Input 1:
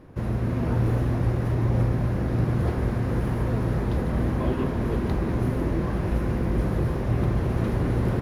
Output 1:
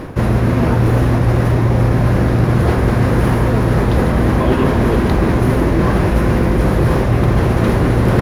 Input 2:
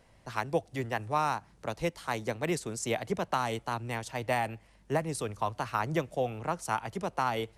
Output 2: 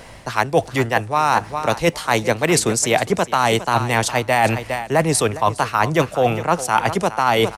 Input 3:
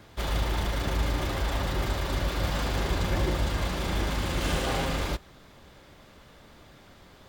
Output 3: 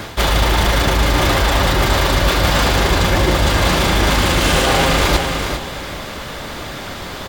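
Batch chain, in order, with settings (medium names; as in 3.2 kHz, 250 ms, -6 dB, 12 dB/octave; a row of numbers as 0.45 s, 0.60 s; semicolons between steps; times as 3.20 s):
bass shelf 440 Hz -5 dB; feedback delay 410 ms, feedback 24%, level -16 dB; reverse; compression 6:1, threshold -38 dBFS; reverse; peak normalisation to -1.5 dBFS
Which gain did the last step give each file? +27.0 dB, +24.5 dB, +26.5 dB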